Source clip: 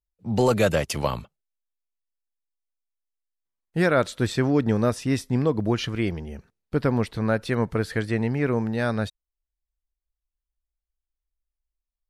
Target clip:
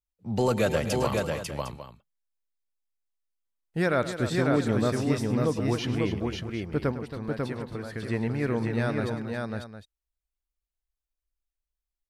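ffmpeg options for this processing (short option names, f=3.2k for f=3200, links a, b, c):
-filter_complex "[0:a]asettb=1/sr,asplit=3[a][b][c];[a]atrim=end=6.914[d];[b]atrim=start=6.91:end=8.03,asetpts=PTS-STARTPTS,afade=t=in:d=0.004:c=qsin,afade=t=out:st=1.116:d=0.004:c=qsin,acompressor=threshold=-28dB:ratio=6[e];[c]atrim=start=8.026[f];[d][e]acrossfade=d=0.004:c1=hsin:c2=qsin[g];[g][f]acrossfade=d=0.004:c1=qsin:c2=hsin,aecho=1:1:104|274|545|755:0.188|0.282|0.668|0.211,volume=-4.5dB"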